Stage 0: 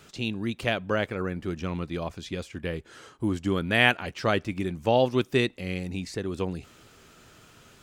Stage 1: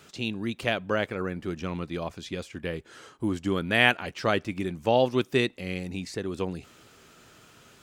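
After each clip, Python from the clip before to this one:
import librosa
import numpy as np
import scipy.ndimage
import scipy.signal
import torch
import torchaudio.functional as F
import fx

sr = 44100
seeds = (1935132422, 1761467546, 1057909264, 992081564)

y = fx.low_shelf(x, sr, hz=76.0, db=-9.0)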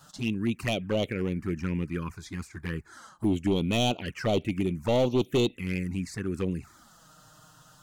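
y = fx.env_phaser(x, sr, low_hz=380.0, high_hz=1900.0, full_db=-19.0)
y = np.clip(y, -10.0 ** (-24.5 / 20.0), 10.0 ** (-24.5 / 20.0))
y = fx.env_flanger(y, sr, rest_ms=7.8, full_db=-29.0)
y = y * librosa.db_to_amplitude(5.5)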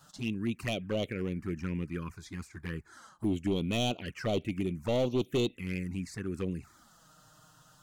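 y = fx.dynamic_eq(x, sr, hz=870.0, q=5.1, threshold_db=-52.0, ratio=4.0, max_db=-5)
y = y * librosa.db_to_amplitude(-4.5)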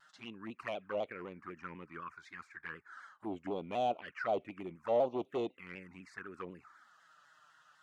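y = fx.auto_wah(x, sr, base_hz=750.0, top_hz=1900.0, q=2.4, full_db=-26.0, direction='down')
y = fx.vibrato_shape(y, sr, shape='saw_down', rate_hz=4.0, depth_cents=100.0)
y = y * librosa.db_to_amplitude(5.0)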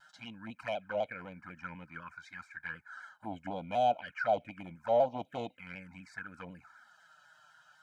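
y = x + 0.97 * np.pad(x, (int(1.3 * sr / 1000.0), 0))[:len(x)]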